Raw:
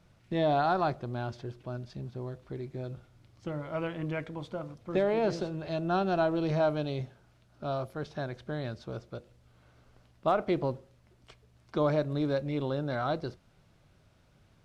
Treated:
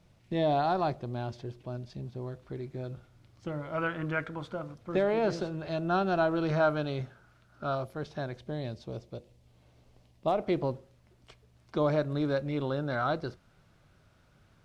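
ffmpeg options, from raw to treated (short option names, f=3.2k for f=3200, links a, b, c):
-af "asetnsamples=n=441:p=0,asendcmd='2.23 equalizer g 1;3.78 equalizer g 13;4.53 equalizer g 3.5;6.31 equalizer g 10;7.75 equalizer g -1;8.39 equalizer g -12;10.44 equalizer g -1.5;11.93 equalizer g 5',equalizer=f=1.4k:t=o:w=0.57:g=-5.5"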